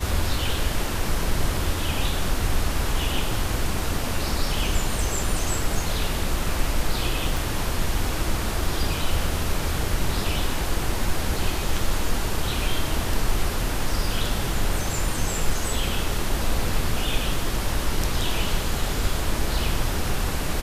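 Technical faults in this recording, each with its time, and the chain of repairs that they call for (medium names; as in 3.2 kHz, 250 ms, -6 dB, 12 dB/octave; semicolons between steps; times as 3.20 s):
7.37 s: pop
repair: de-click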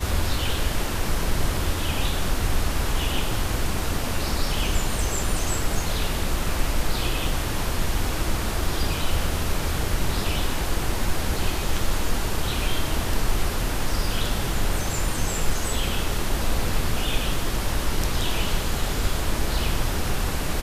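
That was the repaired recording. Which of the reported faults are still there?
7.37 s: pop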